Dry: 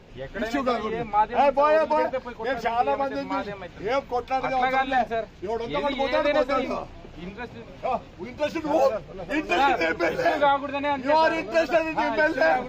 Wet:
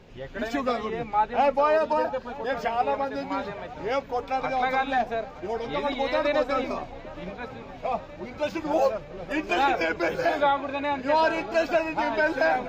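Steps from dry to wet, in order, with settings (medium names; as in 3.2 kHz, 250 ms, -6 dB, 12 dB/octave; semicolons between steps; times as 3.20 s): 1.76–2.49 s: Butterworth band-stop 2.1 kHz, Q 4.3; feedback echo behind a low-pass 920 ms, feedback 70%, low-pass 2.9 kHz, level -18 dB; trim -2 dB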